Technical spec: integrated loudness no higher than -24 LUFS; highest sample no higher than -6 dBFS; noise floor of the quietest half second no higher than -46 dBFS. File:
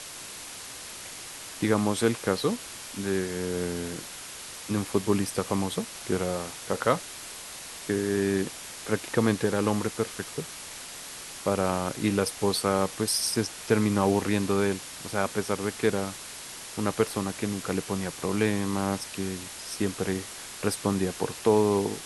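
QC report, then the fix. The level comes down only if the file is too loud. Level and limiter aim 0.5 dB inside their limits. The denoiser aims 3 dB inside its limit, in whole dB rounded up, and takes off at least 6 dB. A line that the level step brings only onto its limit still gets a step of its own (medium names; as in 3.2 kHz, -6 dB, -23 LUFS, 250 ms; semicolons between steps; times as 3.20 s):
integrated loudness -29.0 LUFS: pass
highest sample -7.5 dBFS: pass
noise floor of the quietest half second -41 dBFS: fail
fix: noise reduction 8 dB, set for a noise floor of -41 dBFS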